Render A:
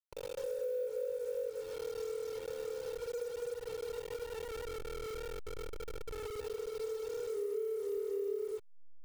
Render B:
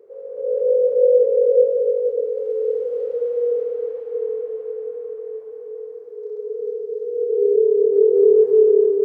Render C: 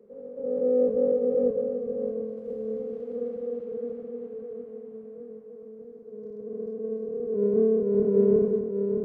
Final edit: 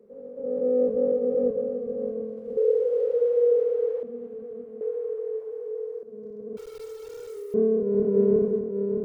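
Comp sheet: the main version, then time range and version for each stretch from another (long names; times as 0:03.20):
C
0:02.57–0:04.03: punch in from B
0:04.81–0:06.03: punch in from B
0:06.57–0:07.54: punch in from A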